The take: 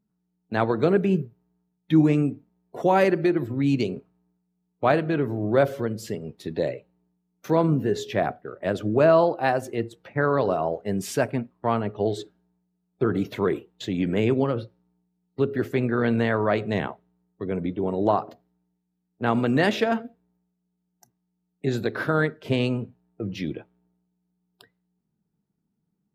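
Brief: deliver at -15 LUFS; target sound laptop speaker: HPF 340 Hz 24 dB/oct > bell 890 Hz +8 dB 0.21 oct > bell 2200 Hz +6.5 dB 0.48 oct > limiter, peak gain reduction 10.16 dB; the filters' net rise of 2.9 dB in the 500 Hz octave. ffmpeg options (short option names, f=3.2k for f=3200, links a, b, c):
-af "highpass=f=340:w=0.5412,highpass=f=340:w=1.3066,equalizer=f=500:t=o:g=4,equalizer=f=890:t=o:w=0.21:g=8,equalizer=f=2.2k:t=o:w=0.48:g=6.5,volume=12dB,alimiter=limit=-2.5dB:level=0:latency=1"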